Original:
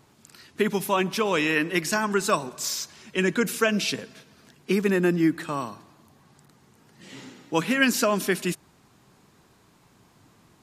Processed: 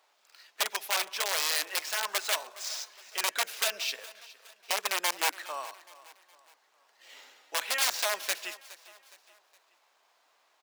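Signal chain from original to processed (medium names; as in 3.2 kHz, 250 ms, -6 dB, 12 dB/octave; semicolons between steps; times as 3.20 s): median filter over 5 samples; integer overflow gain 16 dB; ladder high-pass 510 Hz, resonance 45%; tilt shelf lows -7 dB, about 1.1 kHz; feedback delay 415 ms, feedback 43%, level -19 dB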